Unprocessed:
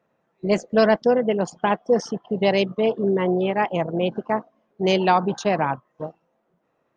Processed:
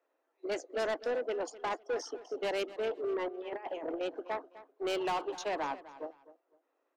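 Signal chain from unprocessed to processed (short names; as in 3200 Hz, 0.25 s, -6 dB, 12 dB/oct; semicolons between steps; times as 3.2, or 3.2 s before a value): steep high-pass 270 Hz 96 dB/oct; 3.28–4.01 negative-ratio compressor -28 dBFS, ratio -0.5; soft clip -20.5 dBFS, distortion -9 dB; feedback echo 0.253 s, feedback 25%, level -16.5 dB; gain -8.5 dB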